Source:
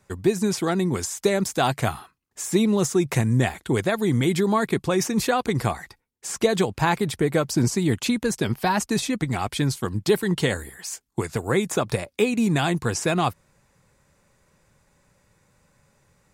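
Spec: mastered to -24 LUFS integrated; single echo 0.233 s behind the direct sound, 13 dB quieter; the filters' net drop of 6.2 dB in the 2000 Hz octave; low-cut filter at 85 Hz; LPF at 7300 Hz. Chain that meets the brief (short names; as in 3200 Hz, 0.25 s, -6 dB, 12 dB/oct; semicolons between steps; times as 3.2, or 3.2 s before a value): HPF 85 Hz; LPF 7300 Hz; bell 2000 Hz -8 dB; echo 0.233 s -13 dB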